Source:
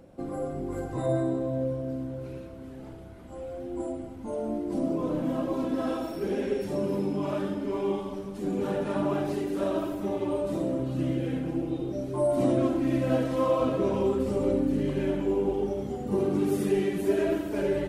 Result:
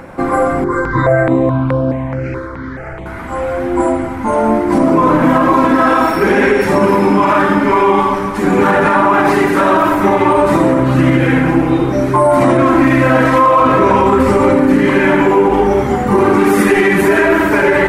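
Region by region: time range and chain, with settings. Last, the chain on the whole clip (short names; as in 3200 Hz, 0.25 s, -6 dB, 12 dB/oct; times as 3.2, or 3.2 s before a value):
0.64–3.06 air absorption 82 m + step phaser 4.7 Hz 720–7000 Hz
whole clip: band shelf 1400 Hz +13 dB; de-hum 48.76 Hz, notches 27; maximiser +20 dB; gain -1 dB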